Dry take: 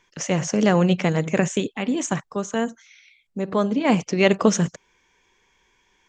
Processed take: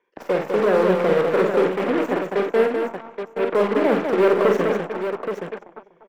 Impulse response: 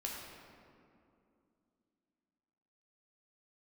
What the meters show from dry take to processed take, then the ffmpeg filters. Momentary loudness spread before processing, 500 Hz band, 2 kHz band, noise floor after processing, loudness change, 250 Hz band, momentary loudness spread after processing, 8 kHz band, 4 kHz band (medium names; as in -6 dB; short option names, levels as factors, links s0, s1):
9 LU, +6.5 dB, +1.0 dB, -56 dBFS, +1.5 dB, -2.5 dB, 11 LU, under -15 dB, -5.0 dB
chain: -filter_complex "[0:a]equalizer=f=460:t=o:w=0.77:g=13.5,asplit=2[s0][s1];[s1]adelay=244,lowpass=f=4700:p=1,volume=0.178,asplit=2[s2][s3];[s3]adelay=244,lowpass=f=4700:p=1,volume=0.48,asplit=2[s4][s5];[s5]adelay=244,lowpass=f=4700:p=1,volume=0.48,asplit=2[s6][s7];[s7]adelay=244,lowpass=f=4700:p=1,volume=0.48[s8];[s2][s4][s6][s8]amix=inputs=4:normalize=0[s9];[s0][s9]amix=inputs=2:normalize=0,aeval=exprs='0.237*(cos(1*acos(clip(val(0)/0.237,-1,1)))-cos(1*PI/2))+0.0266*(cos(4*acos(clip(val(0)/0.237,-1,1)))-cos(4*PI/2))+0.0531*(cos(6*acos(clip(val(0)/0.237,-1,1)))-cos(6*PI/2))+0.0531*(cos(7*acos(clip(val(0)/0.237,-1,1)))-cos(7*PI/2))':c=same,acrossover=split=210 2500:gain=0.0794 1 0.1[s10][s11][s12];[s10][s11][s12]amix=inputs=3:normalize=0,asplit=2[s13][s14];[s14]aecho=0:1:49|82|202|824:0.531|0.112|0.562|0.422[s15];[s13][s15]amix=inputs=2:normalize=0,dynaudnorm=f=410:g=5:m=1.78,bandreject=f=6500:w=17,volume=0.631"